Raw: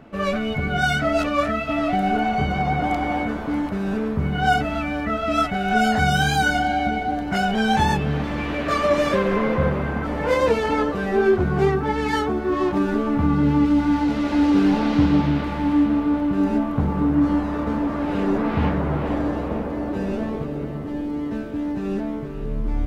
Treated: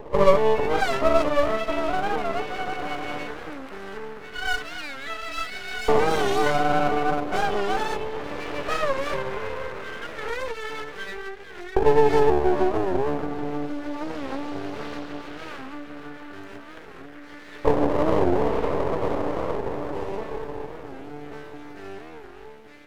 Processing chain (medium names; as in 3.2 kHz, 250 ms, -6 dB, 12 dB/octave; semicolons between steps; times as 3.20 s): resonant low shelf 620 Hz +12.5 dB, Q 3; compression 3:1, threshold -7 dBFS, peak gain reduction 10 dB; LFO high-pass saw up 0.17 Hz 550–1900 Hz; half-wave rectifier; warped record 45 rpm, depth 160 cents; trim -1 dB